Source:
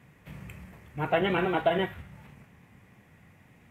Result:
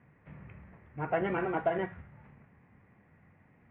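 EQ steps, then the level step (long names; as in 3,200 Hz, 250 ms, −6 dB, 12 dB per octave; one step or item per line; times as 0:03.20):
low-pass filter 2,100 Hz 24 dB per octave
mains-hum notches 60/120/180 Hz
−4.5 dB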